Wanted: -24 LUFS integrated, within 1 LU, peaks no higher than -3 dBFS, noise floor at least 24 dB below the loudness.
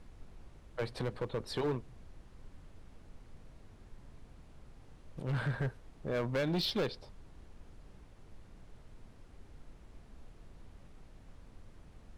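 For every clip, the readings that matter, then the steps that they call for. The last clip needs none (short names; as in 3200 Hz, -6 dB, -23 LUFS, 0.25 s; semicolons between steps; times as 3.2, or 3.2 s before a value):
clipped 1.1%; flat tops at -28.5 dBFS; noise floor -57 dBFS; noise floor target -61 dBFS; loudness -36.5 LUFS; peak -28.5 dBFS; loudness target -24.0 LUFS
-> clip repair -28.5 dBFS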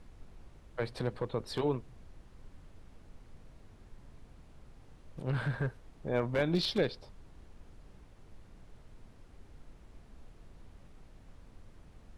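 clipped 0.0%; noise floor -57 dBFS; noise floor target -59 dBFS
-> noise print and reduce 6 dB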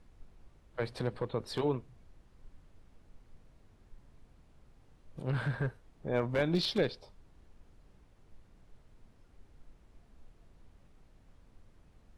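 noise floor -63 dBFS; loudness -34.5 LUFS; peak -19.5 dBFS; loudness target -24.0 LUFS
-> gain +10.5 dB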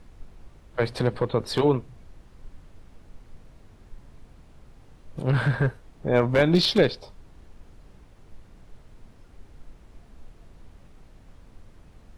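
loudness -24.0 LUFS; peak -9.0 dBFS; noise floor -53 dBFS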